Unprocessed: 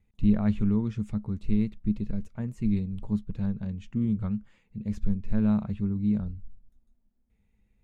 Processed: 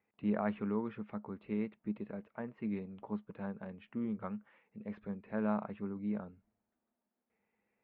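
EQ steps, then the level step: band-pass 540–2400 Hz; distance through air 410 m; +6.0 dB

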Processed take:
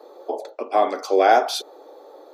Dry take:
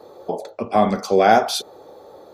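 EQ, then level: elliptic high-pass 280 Hz, stop band 40 dB; peaking EQ 9.6 kHz -3.5 dB 1 oct; -1.0 dB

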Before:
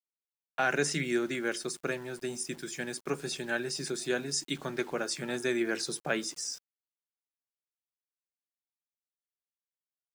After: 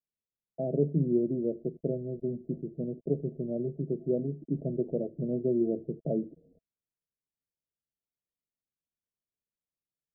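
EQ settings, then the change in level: rippled Chebyshev low-pass 670 Hz, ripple 3 dB; bass shelf 350 Hz +11.5 dB; 0.0 dB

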